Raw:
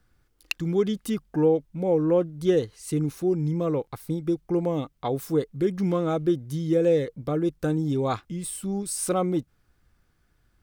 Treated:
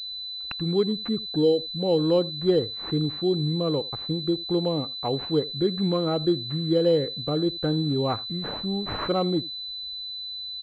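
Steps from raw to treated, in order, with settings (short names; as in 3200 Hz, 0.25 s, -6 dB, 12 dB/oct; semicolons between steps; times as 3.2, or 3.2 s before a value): 0.83–1.8 formant sharpening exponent 1.5; echo 83 ms -21.5 dB; pulse-width modulation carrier 4000 Hz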